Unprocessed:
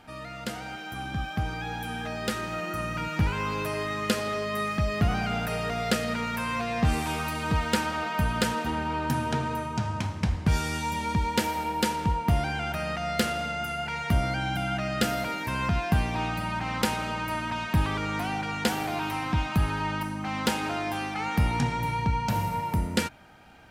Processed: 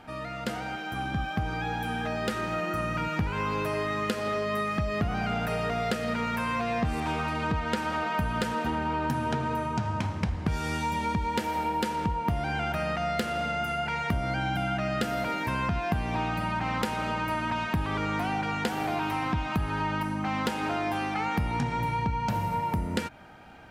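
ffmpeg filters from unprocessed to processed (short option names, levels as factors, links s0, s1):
-filter_complex "[0:a]asettb=1/sr,asplit=3[s0][s1][s2];[s0]atrim=end=7.004[s3];[s1]atrim=start=7:end=7.77,asetpts=PTS-STARTPTS,afade=t=in:d=0.004:c=qsin,afade=t=out:st=0.766:d=0.004:c=qsin,adynamicsmooth=sensitivity=6.5:basefreq=4800[s4];[s2]atrim=start=7.766[s5];[s3][s4]acrossfade=d=0.004:c1=hsin:c2=qsin[s6];[s6][s5]acrossfade=d=0.004:c1=qsin:c2=hsin,lowshelf=f=160:g=-3,acompressor=threshold=0.0355:ratio=6,highshelf=f=3000:g=-8,volume=1.68"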